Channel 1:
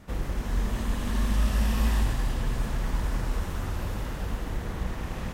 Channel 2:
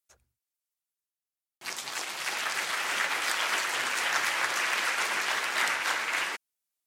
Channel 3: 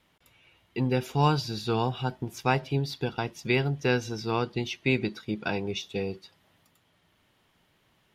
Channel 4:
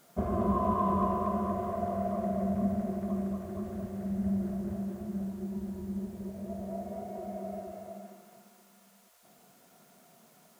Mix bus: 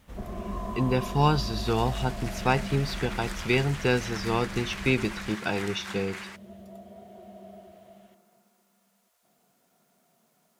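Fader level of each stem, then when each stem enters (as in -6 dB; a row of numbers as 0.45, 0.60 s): -10.5, -11.0, +1.0, -8.0 dB; 0.00, 0.00, 0.00, 0.00 s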